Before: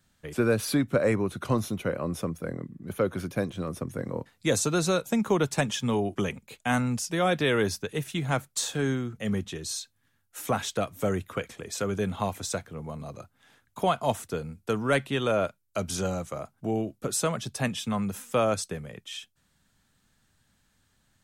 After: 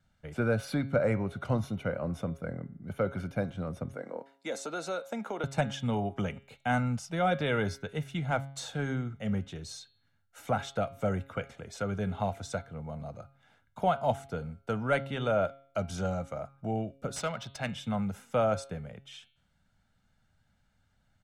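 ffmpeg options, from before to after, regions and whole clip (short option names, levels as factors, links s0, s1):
-filter_complex "[0:a]asettb=1/sr,asplit=3[s0][s1][s2];[s0]atrim=end=3.934[s3];[s1]atrim=start=3.93:end=5.44,asetpts=PTS-STARTPTS,afade=t=in:d=0.004:c=qsin,afade=t=out:st=1.506:d=0.004:c=qsin,highpass=f=270:w=0.5412,highpass=f=270:w=1.3066,acompressor=threshold=0.0447:ratio=2.5:attack=3.2:release=140:knee=1:detection=peak[s4];[s2]atrim=start=5.436[s5];[s3][s4]acrossfade=d=0.004:c1=hsin:c2=qsin[s6];[s6][s5]acrossfade=d=0.004:c1=qsin:c2=hsin,asettb=1/sr,asplit=3[s7][s8][s9];[s7]atrim=end=17.164[s10];[s8]atrim=start=17.16:end=17.69,asetpts=PTS-STARTPTS,afade=t=in:d=0.004:c=qsin,afade=t=out:st=0.526:d=0.004:c=qsin,tiltshelf=f=1200:g=-6.5,adynamicsmooth=sensitivity=6.5:basefreq=2300[s11];[s9]atrim=start=17.686[s12];[s10][s11]acrossfade=d=0.004:c1=hsin:c2=qsin[s13];[s13][s12]acrossfade=d=0.004:c1=qsin:c2=hsin,aemphasis=mode=reproduction:type=75kf,aecho=1:1:1.4:0.51,bandreject=f=136.9:t=h:w=4,bandreject=f=273.8:t=h:w=4,bandreject=f=410.7:t=h:w=4,bandreject=f=547.6:t=h:w=4,bandreject=f=684.5:t=h:w=4,bandreject=f=821.4:t=h:w=4,bandreject=f=958.3:t=h:w=4,bandreject=f=1095.2:t=h:w=4,bandreject=f=1232.1:t=h:w=4,bandreject=f=1369:t=h:w=4,bandreject=f=1505.9:t=h:w=4,bandreject=f=1642.8:t=h:w=4,bandreject=f=1779.7:t=h:w=4,bandreject=f=1916.6:t=h:w=4,bandreject=f=2053.5:t=h:w=4,bandreject=f=2190.4:t=h:w=4,bandreject=f=2327.3:t=h:w=4,bandreject=f=2464.2:t=h:w=4,bandreject=f=2601.1:t=h:w=4,bandreject=f=2738:t=h:w=4,bandreject=f=2874.9:t=h:w=4,bandreject=f=3011.8:t=h:w=4,bandreject=f=3148.7:t=h:w=4,bandreject=f=3285.6:t=h:w=4,bandreject=f=3422.5:t=h:w=4,bandreject=f=3559.4:t=h:w=4,bandreject=f=3696.3:t=h:w=4,bandreject=f=3833.2:t=h:w=4,bandreject=f=3970.1:t=h:w=4,bandreject=f=4107:t=h:w=4,bandreject=f=4243.9:t=h:w=4,bandreject=f=4380.8:t=h:w=4,volume=0.708"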